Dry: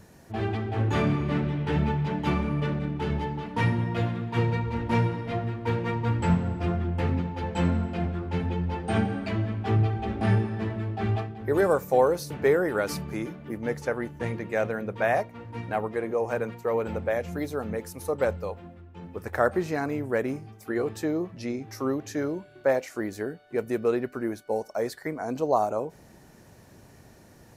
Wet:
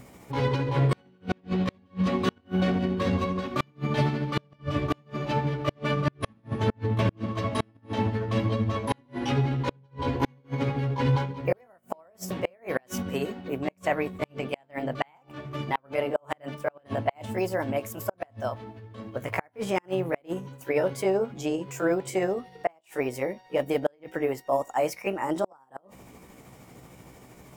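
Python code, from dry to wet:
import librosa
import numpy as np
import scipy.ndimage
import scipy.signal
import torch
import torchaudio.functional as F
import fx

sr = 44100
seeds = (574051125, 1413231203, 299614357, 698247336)

y = fx.pitch_heads(x, sr, semitones=4.0)
y = fx.gate_flip(y, sr, shuts_db=-17.0, range_db=-37)
y = y * 10.0 ** (4.0 / 20.0)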